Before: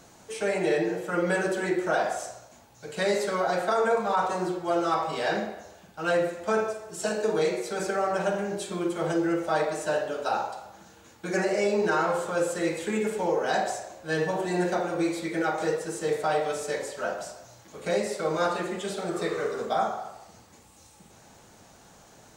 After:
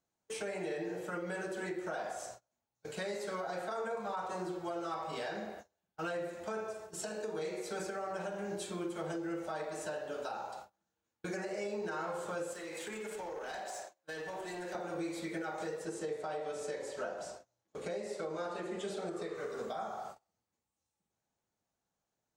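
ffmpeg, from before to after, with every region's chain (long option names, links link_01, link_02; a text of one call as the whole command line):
ffmpeg -i in.wav -filter_complex "[0:a]asettb=1/sr,asplit=3[link_01][link_02][link_03];[link_01]atrim=end=12.534[link_04];[link_02]atrim=start=12.53:end=14.75,asetpts=PTS-STARTPTS,afade=type=in:duration=0.004:curve=qsin,afade=type=out:start_time=2.216:duration=0.004:curve=qsin,highpass=frequency=530:poles=1,acompressor=threshold=-33dB:ratio=6:attack=3.2:release=140:knee=1:detection=peak,volume=33dB,asoftclip=hard,volume=-33dB[link_05];[link_03]atrim=start=14.746[link_06];[link_04][link_05]acrossfade=duration=0.004:curve1=hsin:curve2=qsin[link_07];[link_07][link_06]acrossfade=duration=0.004:curve1=qsin:curve2=hsin,asettb=1/sr,asplit=3[link_08][link_09][link_10];[link_08]atrim=end=15.854[link_11];[link_09]atrim=start=15.85:end=19.35,asetpts=PTS-STARTPTS,afade=type=in:duration=0.004:curve=qsin,afade=type=out:start_time=3.496:duration=0.004:curve=qsin,lowpass=10000,equalizer=frequency=420:width_type=o:width=1.5:gain=4.5[link_12];[link_10]atrim=start=19.346[link_13];[link_11][link_12]acrossfade=duration=0.004:curve1=hsin:curve2=qsin[link_14];[link_14][link_13]acrossfade=duration=0.004:curve1=qsin:curve2=hsin,agate=range=-30dB:threshold=-41dB:ratio=16:detection=peak,acompressor=threshold=-29dB:ratio=2.5,alimiter=level_in=1dB:limit=-24dB:level=0:latency=1:release=395,volume=-1dB,volume=-4.5dB" out.wav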